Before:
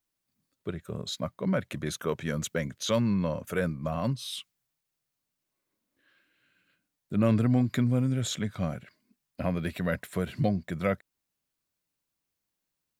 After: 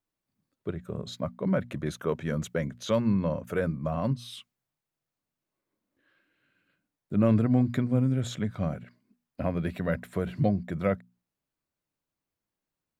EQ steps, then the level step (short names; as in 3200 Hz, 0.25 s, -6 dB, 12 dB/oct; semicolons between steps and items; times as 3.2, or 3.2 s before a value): high shelf 2100 Hz -10.5 dB; notches 60/120/180/240 Hz; +2.0 dB